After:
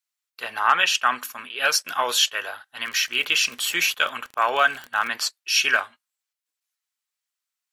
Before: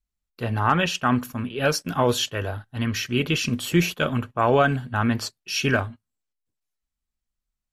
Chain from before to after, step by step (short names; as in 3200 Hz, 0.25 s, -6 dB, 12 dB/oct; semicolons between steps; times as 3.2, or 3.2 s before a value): HPF 1200 Hz 12 dB/oct; 2.76–5.1 crackle 44/s -33 dBFS; gain +6.5 dB